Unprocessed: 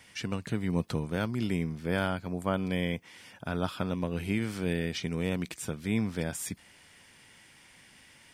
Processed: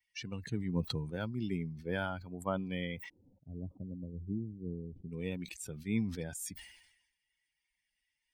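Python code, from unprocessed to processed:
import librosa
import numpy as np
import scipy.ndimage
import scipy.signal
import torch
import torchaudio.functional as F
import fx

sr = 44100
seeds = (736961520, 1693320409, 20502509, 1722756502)

y = fx.bin_expand(x, sr, power=2.0)
y = fx.gaussian_blur(y, sr, sigma=23.0, at=(3.08, 5.11), fade=0.02)
y = fx.sustainer(y, sr, db_per_s=64.0)
y = y * 10.0 ** (-2.0 / 20.0)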